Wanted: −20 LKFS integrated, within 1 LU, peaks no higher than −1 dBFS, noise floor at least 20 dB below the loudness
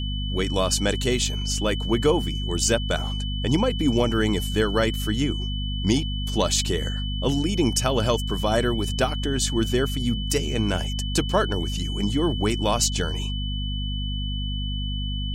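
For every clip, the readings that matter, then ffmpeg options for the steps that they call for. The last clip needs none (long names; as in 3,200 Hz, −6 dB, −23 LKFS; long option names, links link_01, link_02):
mains hum 50 Hz; hum harmonics up to 250 Hz; level of the hum −25 dBFS; interfering tone 3,000 Hz; level of the tone −33 dBFS; integrated loudness −24.5 LKFS; sample peak −7.0 dBFS; target loudness −20.0 LKFS
→ -af "bandreject=frequency=50:width_type=h:width=6,bandreject=frequency=100:width_type=h:width=6,bandreject=frequency=150:width_type=h:width=6,bandreject=frequency=200:width_type=h:width=6,bandreject=frequency=250:width_type=h:width=6"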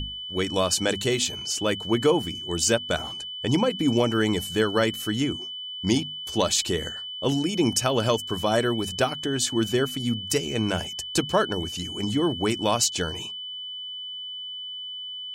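mains hum none found; interfering tone 3,000 Hz; level of the tone −33 dBFS
→ -af "bandreject=frequency=3000:width=30"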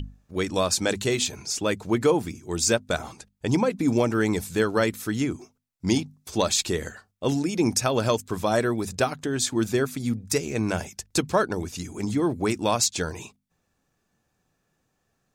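interfering tone none found; integrated loudness −25.5 LKFS; sample peak −8.5 dBFS; target loudness −20.0 LKFS
→ -af "volume=5.5dB"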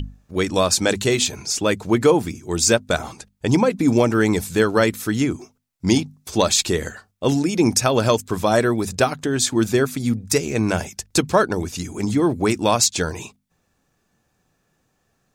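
integrated loudness −20.0 LKFS; sample peak −3.0 dBFS; background noise floor −69 dBFS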